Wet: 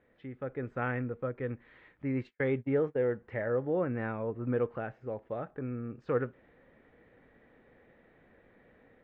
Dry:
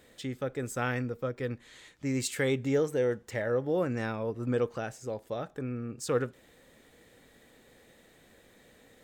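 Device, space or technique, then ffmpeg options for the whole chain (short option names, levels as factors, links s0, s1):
action camera in a waterproof case: -filter_complex "[0:a]asplit=3[s0][s1][s2];[s0]afade=t=out:st=2.09:d=0.02[s3];[s1]agate=range=0.00562:threshold=0.0282:ratio=16:detection=peak,afade=t=in:st=2.09:d=0.02,afade=t=out:st=3.03:d=0.02[s4];[s2]afade=t=in:st=3.03:d=0.02[s5];[s3][s4][s5]amix=inputs=3:normalize=0,lowpass=f=2200:w=0.5412,lowpass=f=2200:w=1.3066,dynaudnorm=f=300:g=3:m=2.11,volume=0.398" -ar 22050 -c:a aac -b:a 48k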